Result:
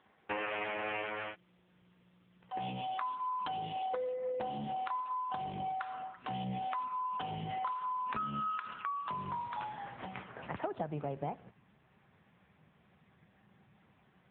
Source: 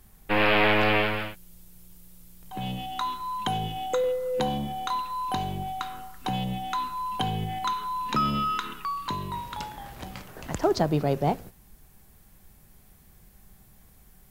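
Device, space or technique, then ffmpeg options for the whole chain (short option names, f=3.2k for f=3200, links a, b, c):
voicemail: -af "asubboost=boost=11.5:cutoff=100,highpass=350,lowpass=2.7k,acompressor=threshold=-35dB:ratio=12,volume=2.5dB" -ar 8000 -c:a libopencore_amrnb -b:a 6700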